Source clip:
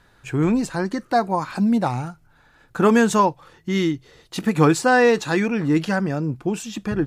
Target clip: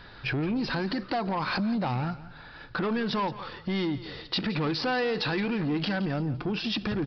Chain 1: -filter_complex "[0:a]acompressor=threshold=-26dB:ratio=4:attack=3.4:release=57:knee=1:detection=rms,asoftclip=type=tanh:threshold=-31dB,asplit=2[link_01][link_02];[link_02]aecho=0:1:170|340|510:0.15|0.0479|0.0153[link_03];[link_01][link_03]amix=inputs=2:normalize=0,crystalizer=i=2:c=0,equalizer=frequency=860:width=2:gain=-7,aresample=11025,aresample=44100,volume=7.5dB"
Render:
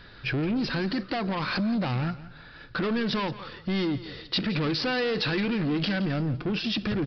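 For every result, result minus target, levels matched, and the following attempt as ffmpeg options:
downward compressor: peak gain reduction −5 dB; 1,000 Hz band −4.0 dB
-filter_complex "[0:a]acompressor=threshold=-32.5dB:ratio=4:attack=3.4:release=57:knee=1:detection=rms,asoftclip=type=tanh:threshold=-31dB,asplit=2[link_01][link_02];[link_02]aecho=0:1:170|340|510:0.15|0.0479|0.0153[link_03];[link_01][link_03]amix=inputs=2:normalize=0,crystalizer=i=2:c=0,equalizer=frequency=860:width=2:gain=-7,aresample=11025,aresample=44100,volume=7.5dB"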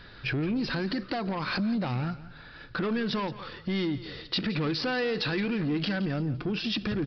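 1,000 Hz band −4.0 dB
-filter_complex "[0:a]acompressor=threshold=-32.5dB:ratio=4:attack=3.4:release=57:knee=1:detection=rms,asoftclip=type=tanh:threshold=-31dB,asplit=2[link_01][link_02];[link_02]aecho=0:1:170|340|510:0.15|0.0479|0.0153[link_03];[link_01][link_03]amix=inputs=2:normalize=0,crystalizer=i=2:c=0,aresample=11025,aresample=44100,volume=7.5dB"

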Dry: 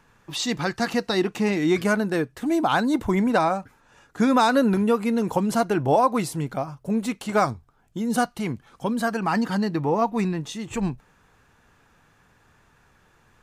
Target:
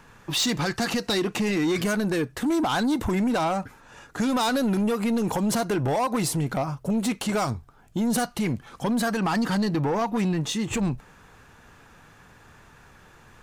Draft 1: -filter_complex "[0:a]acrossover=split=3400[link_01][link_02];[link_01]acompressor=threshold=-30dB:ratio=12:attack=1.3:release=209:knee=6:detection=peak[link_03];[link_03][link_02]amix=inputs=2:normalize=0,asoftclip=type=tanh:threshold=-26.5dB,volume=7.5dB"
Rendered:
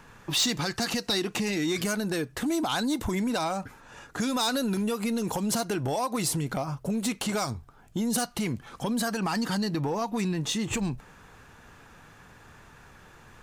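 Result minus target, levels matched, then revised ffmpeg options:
downward compressor: peak gain reduction +7 dB
-filter_complex "[0:a]acrossover=split=3400[link_01][link_02];[link_01]acompressor=threshold=-22.5dB:ratio=12:attack=1.3:release=209:knee=6:detection=peak[link_03];[link_03][link_02]amix=inputs=2:normalize=0,asoftclip=type=tanh:threshold=-26.5dB,volume=7.5dB"

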